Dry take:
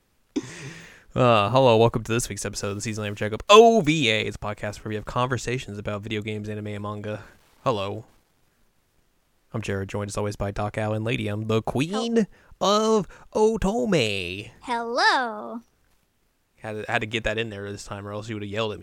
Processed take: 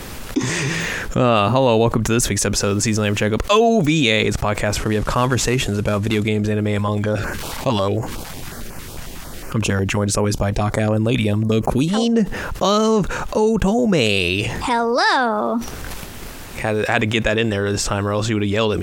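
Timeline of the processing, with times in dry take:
4.75–6.28 CVSD 64 kbps
6.79–12.06 stepped notch 11 Hz 360–3600 Hz
whole clip: dynamic EQ 230 Hz, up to +4 dB, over -33 dBFS, Q 1.4; fast leveller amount 70%; gain -5 dB

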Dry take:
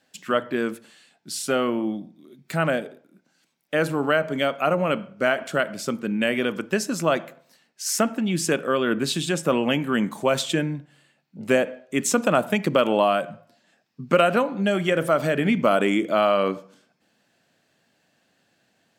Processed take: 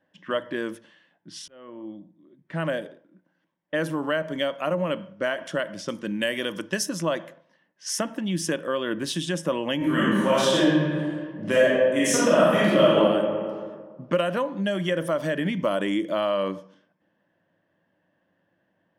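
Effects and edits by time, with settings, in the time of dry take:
1.48–2.81 fade in
5.88–6.89 high shelf 3900 Hz +9 dB
9.77–12.97 reverb throw, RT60 1.6 s, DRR -10 dB
whole clip: low-pass opened by the level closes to 1500 Hz, open at -21 dBFS; ripple EQ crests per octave 1.2, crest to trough 8 dB; compressor 1.5:1, threshold -24 dBFS; gain -2.5 dB

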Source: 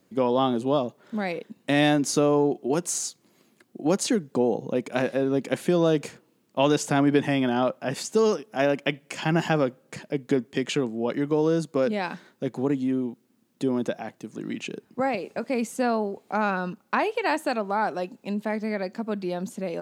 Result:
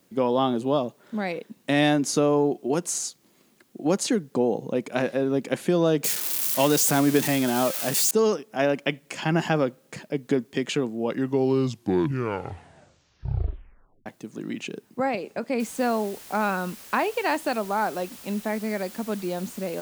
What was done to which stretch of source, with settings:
6.04–8.11 switching spikes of -17 dBFS
11 tape stop 3.06 s
15.6 noise floor step -68 dB -45 dB

